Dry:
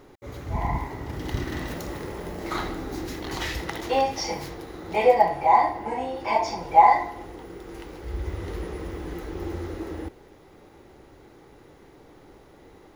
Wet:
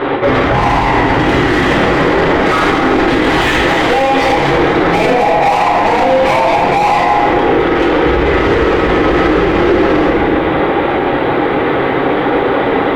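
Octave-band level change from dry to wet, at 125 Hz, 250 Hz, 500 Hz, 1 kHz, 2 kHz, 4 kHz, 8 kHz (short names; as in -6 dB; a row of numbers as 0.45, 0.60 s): +16.0, +22.5, +17.5, +12.0, +21.5, +18.5, +9.5 dB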